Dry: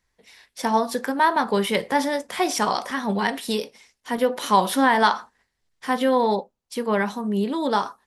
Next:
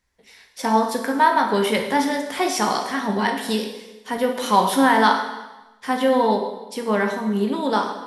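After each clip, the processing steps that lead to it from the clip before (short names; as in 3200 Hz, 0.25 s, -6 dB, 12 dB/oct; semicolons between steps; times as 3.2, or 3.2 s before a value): plate-style reverb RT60 1.1 s, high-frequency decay 0.95×, DRR 3 dB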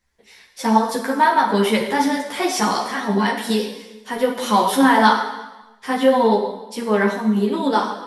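ensemble effect; gain +4.5 dB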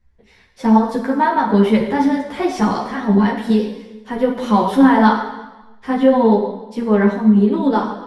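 RIAA curve playback; gain -1 dB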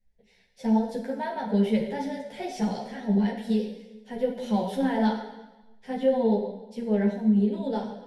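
fixed phaser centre 310 Hz, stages 6; gain -8.5 dB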